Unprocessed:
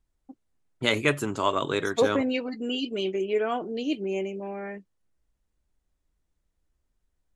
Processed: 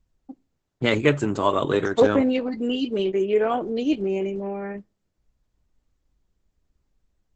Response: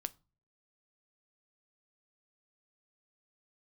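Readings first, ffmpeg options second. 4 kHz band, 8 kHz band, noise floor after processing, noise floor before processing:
-1.0 dB, no reading, -77 dBFS, -78 dBFS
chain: -filter_complex "[0:a]tiltshelf=f=1100:g=3.5,asplit=2[s0][s1];[1:a]atrim=start_sample=2205[s2];[s1][s2]afir=irnorm=-1:irlink=0,volume=0.562[s3];[s0][s3]amix=inputs=2:normalize=0" -ar 48000 -c:a libopus -b:a 10k

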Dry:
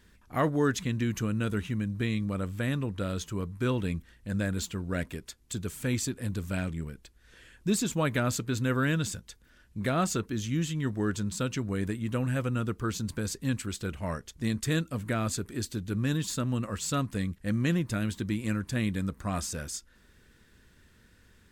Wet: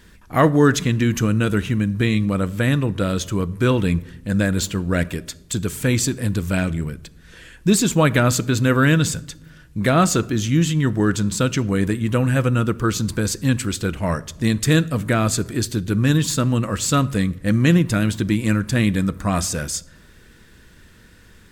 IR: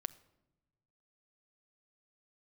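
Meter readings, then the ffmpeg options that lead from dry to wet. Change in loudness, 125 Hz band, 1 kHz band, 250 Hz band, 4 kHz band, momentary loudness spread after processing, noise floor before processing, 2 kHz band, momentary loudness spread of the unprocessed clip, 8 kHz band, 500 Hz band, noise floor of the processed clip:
+11.5 dB, +11.5 dB, +11.5 dB, +11.0 dB, +11.5 dB, 8 LU, -61 dBFS, +11.5 dB, 8 LU, +11.0 dB, +11.5 dB, -48 dBFS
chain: -filter_complex "[0:a]asplit=2[s0][s1];[1:a]atrim=start_sample=2205[s2];[s1][s2]afir=irnorm=-1:irlink=0,volume=3.35[s3];[s0][s3]amix=inputs=2:normalize=0"

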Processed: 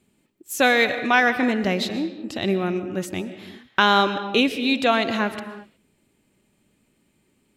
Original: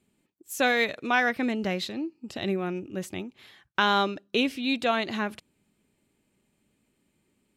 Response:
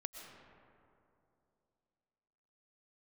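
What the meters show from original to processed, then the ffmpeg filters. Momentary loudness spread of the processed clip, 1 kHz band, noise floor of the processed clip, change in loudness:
14 LU, +6.0 dB, -67 dBFS, +6.0 dB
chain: -filter_complex "[0:a]asplit=2[s0][s1];[1:a]atrim=start_sample=2205,afade=t=out:st=0.43:d=0.01,atrim=end_sample=19404[s2];[s1][s2]afir=irnorm=-1:irlink=0,volume=1.5[s3];[s0][s3]amix=inputs=2:normalize=0"

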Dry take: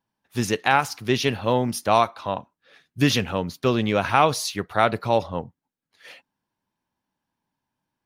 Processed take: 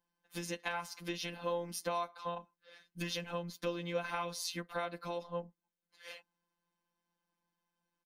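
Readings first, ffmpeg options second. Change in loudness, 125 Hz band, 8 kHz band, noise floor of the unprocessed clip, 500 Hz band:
-17.0 dB, -19.0 dB, -12.5 dB, -85 dBFS, -15.5 dB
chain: -af "acompressor=threshold=0.0282:ratio=4,afftfilt=real='hypot(re,im)*cos(PI*b)':imag='0':win_size=1024:overlap=0.75,aecho=1:1:3.9:0.95,volume=0.668"

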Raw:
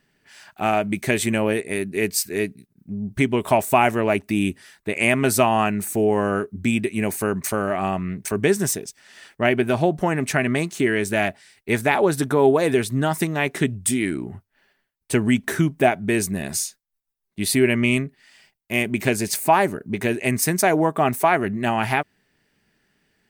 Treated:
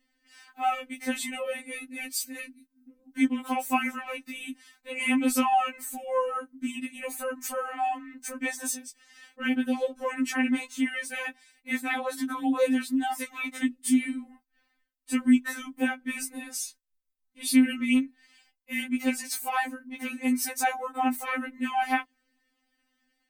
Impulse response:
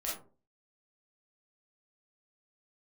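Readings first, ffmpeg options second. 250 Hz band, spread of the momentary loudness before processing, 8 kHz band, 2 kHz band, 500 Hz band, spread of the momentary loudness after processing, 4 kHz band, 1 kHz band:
-4.5 dB, 8 LU, -7.5 dB, -7.5 dB, -14.0 dB, 12 LU, -6.5 dB, -6.5 dB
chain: -af "afftfilt=real='re*3.46*eq(mod(b,12),0)':imag='im*3.46*eq(mod(b,12),0)':win_size=2048:overlap=0.75,volume=0.562"

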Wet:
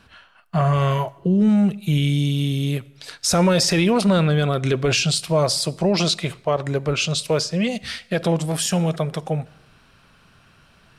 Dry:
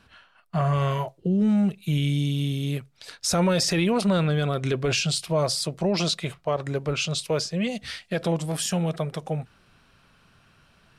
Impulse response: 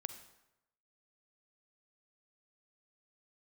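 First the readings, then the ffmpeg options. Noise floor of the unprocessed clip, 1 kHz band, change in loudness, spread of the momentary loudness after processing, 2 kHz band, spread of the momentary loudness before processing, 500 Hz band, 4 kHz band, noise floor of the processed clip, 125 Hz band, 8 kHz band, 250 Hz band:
-60 dBFS, +5.0 dB, +5.0 dB, 9 LU, +5.0 dB, 9 LU, +5.0 dB, +5.0 dB, -55 dBFS, +4.5 dB, +5.0 dB, +4.5 dB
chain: -filter_complex "[0:a]asplit=2[s0][s1];[1:a]atrim=start_sample=2205[s2];[s1][s2]afir=irnorm=-1:irlink=0,volume=0.422[s3];[s0][s3]amix=inputs=2:normalize=0,volume=1.33"

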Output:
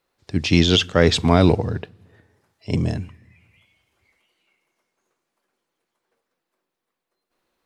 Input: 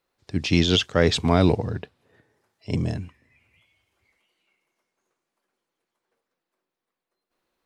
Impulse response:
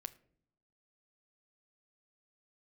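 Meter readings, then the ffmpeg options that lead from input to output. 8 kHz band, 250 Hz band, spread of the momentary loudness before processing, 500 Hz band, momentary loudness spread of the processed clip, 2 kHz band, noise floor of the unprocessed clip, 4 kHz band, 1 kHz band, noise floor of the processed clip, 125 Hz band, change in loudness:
+3.5 dB, +3.5 dB, 12 LU, +3.5 dB, 12 LU, +3.5 dB, under -85 dBFS, +3.5 dB, +3.5 dB, -82 dBFS, +4.0 dB, +3.5 dB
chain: -filter_complex "[0:a]asplit=2[s0][s1];[1:a]atrim=start_sample=2205,asetrate=29106,aresample=44100[s2];[s1][s2]afir=irnorm=-1:irlink=0,volume=0.447[s3];[s0][s3]amix=inputs=2:normalize=0,volume=1.12"

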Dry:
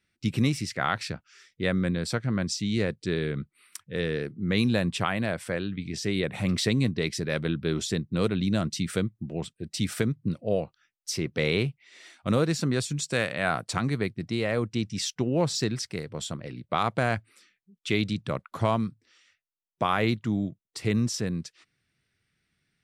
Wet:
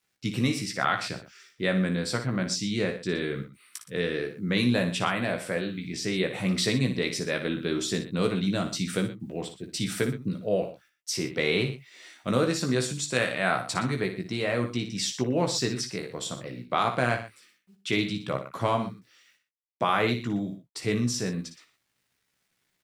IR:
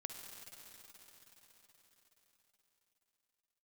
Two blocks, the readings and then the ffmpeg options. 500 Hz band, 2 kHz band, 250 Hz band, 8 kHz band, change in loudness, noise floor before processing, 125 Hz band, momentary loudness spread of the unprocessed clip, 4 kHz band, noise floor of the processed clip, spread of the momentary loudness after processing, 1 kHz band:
+1.0 dB, +1.5 dB, -0.5 dB, +1.5 dB, 0.0 dB, -82 dBFS, -2.5 dB, 9 LU, +1.5 dB, -76 dBFS, 10 LU, +1.5 dB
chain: -filter_complex "[0:a]highpass=f=190:p=1,acrusher=bits=11:mix=0:aa=0.000001,asplit=2[s0][s1];[s1]adelay=16,volume=0.531[s2];[s0][s2]amix=inputs=2:normalize=0,asplit=2[s3][s4];[s4]aecho=0:1:58|119:0.335|0.178[s5];[s3][s5]amix=inputs=2:normalize=0"

